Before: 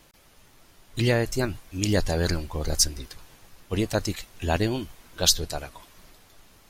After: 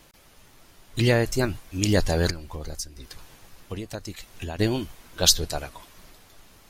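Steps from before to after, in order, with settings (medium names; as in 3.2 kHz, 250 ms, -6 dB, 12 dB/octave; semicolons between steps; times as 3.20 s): 2.30–4.59 s: compression 8:1, threshold -33 dBFS, peak gain reduction 17 dB; trim +2 dB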